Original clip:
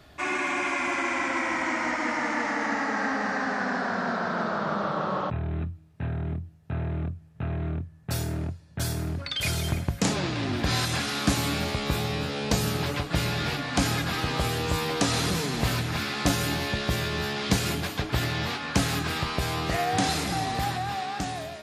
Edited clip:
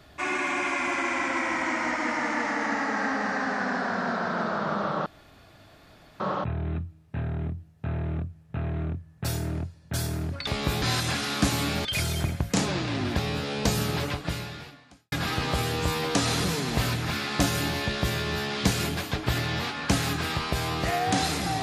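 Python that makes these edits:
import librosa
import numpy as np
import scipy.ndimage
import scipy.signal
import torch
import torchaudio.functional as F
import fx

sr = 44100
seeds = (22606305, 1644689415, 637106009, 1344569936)

y = fx.edit(x, sr, fx.insert_room_tone(at_s=5.06, length_s=1.14),
    fx.swap(start_s=9.33, length_s=1.34, other_s=11.7, other_length_s=0.35),
    fx.fade_out_span(start_s=12.91, length_s=1.07, curve='qua'), tone=tone)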